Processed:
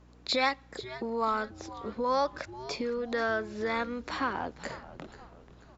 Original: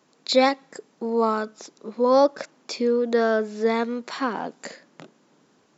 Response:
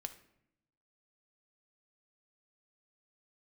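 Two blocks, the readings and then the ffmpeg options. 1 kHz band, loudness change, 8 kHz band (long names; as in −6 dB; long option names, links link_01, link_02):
−5.5 dB, −9.0 dB, can't be measured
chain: -filter_complex "[0:a]lowpass=frequency=2700:poles=1,acrossover=split=1000[link_01][link_02];[link_01]acompressor=threshold=-34dB:ratio=4[link_03];[link_03][link_02]amix=inputs=2:normalize=0,aeval=exprs='val(0)+0.00158*(sin(2*PI*60*n/s)+sin(2*PI*2*60*n/s)/2+sin(2*PI*3*60*n/s)/3+sin(2*PI*4*60*n/s)/4+sin(2*PI*5*60*n/s)/5)':channel_layout=same,asplit=5[link_04][link_05][link_06][link_07][link_08];[link_05]adelay=485,afreqshift=-140,volume=-15dB[link_09];[link_06]adelay=970,afreqshift=-280,volume=-22.1dB[link_10];[link_07]adelay=1455,afreqshift=-420,volume=-29.3dB[link_11];[link_08]adelay=1940,afreqshift=-560,volume=-36.4dB[link_12];[link_04][link_09][link_10][link_11][link_12]amix=inputs=5:normalize=0"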